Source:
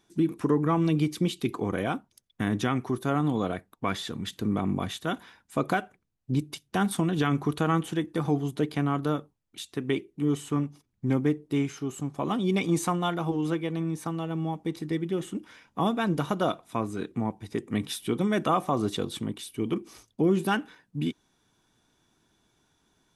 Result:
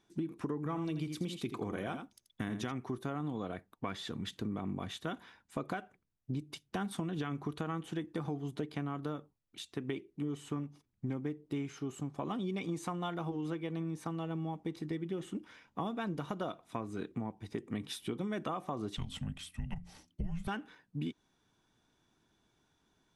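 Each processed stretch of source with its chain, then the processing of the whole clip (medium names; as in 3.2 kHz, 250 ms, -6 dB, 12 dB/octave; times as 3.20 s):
0.57–2.72 s: treble shelf 4.4 kHz +6 dB + delay 82 ms -9.5 dB
18.96–20.48 s: band-stop 5.1 kHz, Q 26 + de-hum 91.9 Hz, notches 6 + frequency shift -360 Hz
whole clip: treble shelf 9 kHz -11 dB; compression, threshold -29 dBFS; trim -4.5 dB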